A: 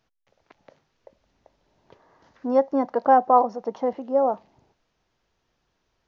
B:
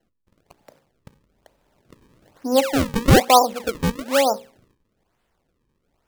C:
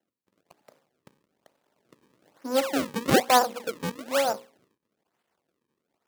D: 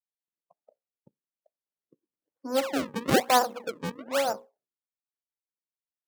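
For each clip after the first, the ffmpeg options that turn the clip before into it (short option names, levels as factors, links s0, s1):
-filter_complex "[0:a]bandreject=f=60:t=h:w=6,bandreject=f=120:t=h:w=6,bandreject=f=180:t=h:w=6,bandreject=f=240:t=h:w=6,bandreject=f=300:t=h:w=6,bandreject=f=360:t=h:w=6,bandreject=f=420:t=h:w=6,bandreject=f=480:t=h:w=6,bandreject=f=540:t=h:w=6,acrossover=split=150[s0][s1];[s1]acrusher=samples=36:mix=1:aa=0.000001:lfo=1:lforange=57.6:lforate=1.1[s2];[s0][s2]amix=inputs=2:normalize=0,volume=1.5"
-af "aeval=exprs='if(lt(val(0),0),0.251*val(0),val(0))':c=same,highpass=210,volume=0.794"
-af "afftdn=nr=33:nf=-46,volume=0.794"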